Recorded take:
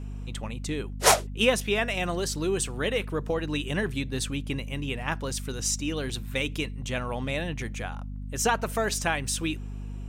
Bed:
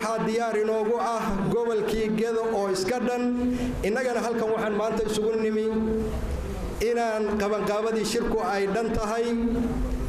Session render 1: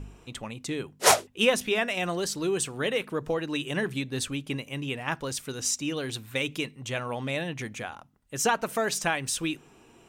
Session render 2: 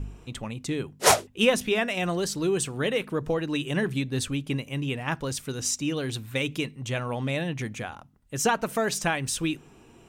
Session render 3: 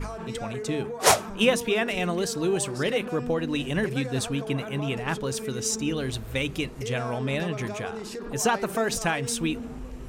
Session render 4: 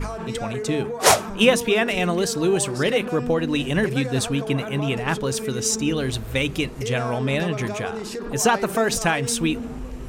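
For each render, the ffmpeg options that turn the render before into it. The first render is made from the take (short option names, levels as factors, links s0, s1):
-af "bandreject=f=50:t=h:w=4,bandreject=f=100:t=h:w=4,bandreject=f=150:t=h:w=4,bandreject=f=200:t=h:w=4,bandreject=f=250:t=h:w=4"
-af "lowshelf=f=240:g=7.5"
-filter_complex "[1:a]volume=0.299[s0];[0:a][s0]amix=inputs=2:normalize=0"
-af "volume=1.78,alimiter=limit=0.794:level=0:latency=1"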